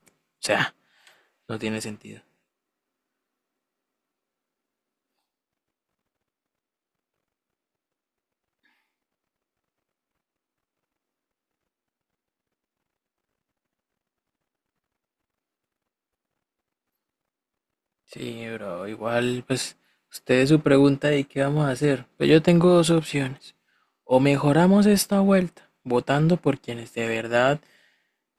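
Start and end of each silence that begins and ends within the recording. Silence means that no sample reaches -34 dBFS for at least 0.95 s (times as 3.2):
2.15–18.13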